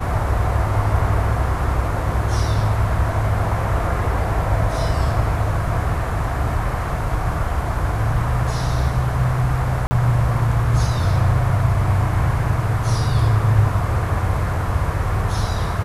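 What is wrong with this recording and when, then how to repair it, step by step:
9.87–9.91 gap 40 ms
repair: interpolate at 9.87, 40 ms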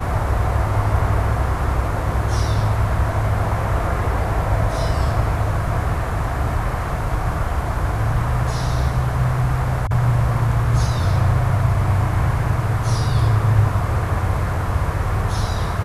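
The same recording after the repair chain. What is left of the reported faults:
none

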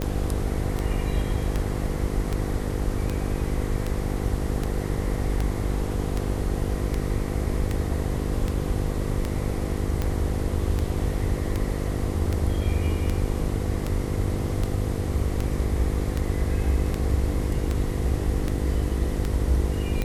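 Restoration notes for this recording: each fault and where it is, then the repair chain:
buzz 50 Hz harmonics 10 -29 dBFS
tick 78 rpm -13 dBFS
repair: de-click; de-hum 50 Hz, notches 10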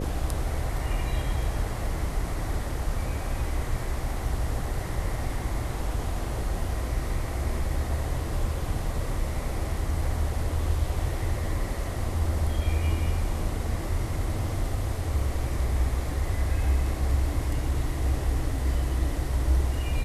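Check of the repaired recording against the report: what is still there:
none

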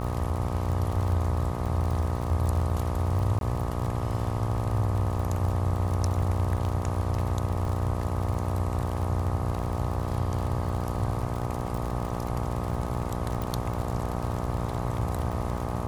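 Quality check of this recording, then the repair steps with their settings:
buzz 60 Hz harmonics 21 -32 dBFS
crackle 41/s -31 dBFS
3.39–3.41 gap 22 ms
13.42 pop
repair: de-click; de-hum 60 Hz, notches 21; interpolate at 3.39, 22 ms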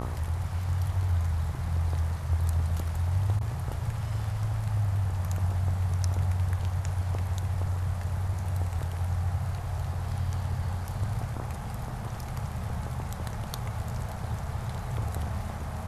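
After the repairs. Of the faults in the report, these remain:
none

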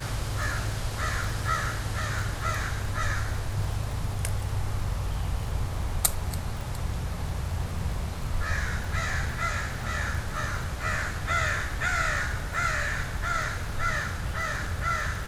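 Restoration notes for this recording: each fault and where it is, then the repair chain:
crackle 40/s -34 dBFS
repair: de-click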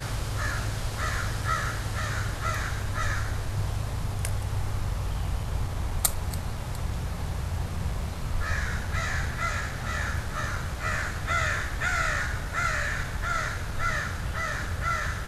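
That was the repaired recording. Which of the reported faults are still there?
none

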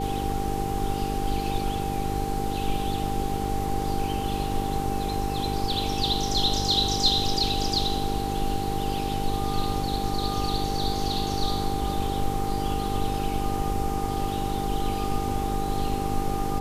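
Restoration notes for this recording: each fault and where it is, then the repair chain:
buzz 50 Hz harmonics 9 -31 dBFS
tone 790 Hz -30 dBFS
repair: de-hum 50 Hz, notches 9; notch 790 Hz, Q 30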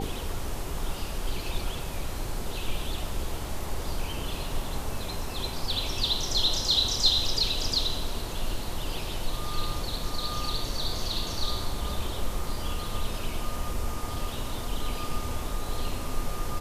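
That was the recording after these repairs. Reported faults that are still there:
none

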